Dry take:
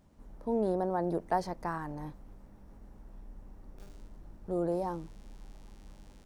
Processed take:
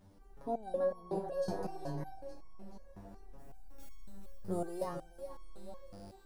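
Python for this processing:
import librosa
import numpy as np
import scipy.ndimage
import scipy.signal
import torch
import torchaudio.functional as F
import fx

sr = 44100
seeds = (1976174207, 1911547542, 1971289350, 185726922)

y = fx.spec_repair(x, sr, seeds[0], start_s=0.91, length_s=0.97, low_hz=690.0, high_hz=2300.0, source='before')
y = fx.high_shelf(y, sr, hz=6200.0, db=12.0, at=(3.38, 4.84))
y = fx.echo_split(y, sr, split_hz=320.0, low_ms=134, high_ms=433, feedback_pct=52, wet_db=-10.5)
y = fx.resonator_held(y, sr, hz=5.4, low_hz=98.0, high_hz=1100.0)
y = y * 10.0 ** (11.5 / 20.0)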